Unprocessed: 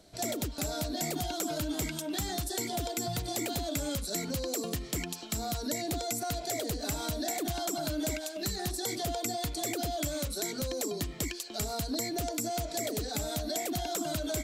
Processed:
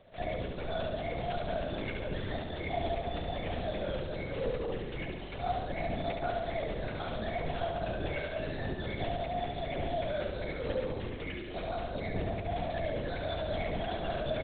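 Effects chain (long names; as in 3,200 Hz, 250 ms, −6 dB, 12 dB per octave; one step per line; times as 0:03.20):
brickwall limiter −27 dBFS, peak gain reduction 6.5 dB
convolution reverb RT60 0.80 s, pre-delay 3 ms, DRR 8 dB
linear-prediction vocoder at 8 kHz whisper
repeating echo 70 ms, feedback 53%, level −5 dB
level −7 dB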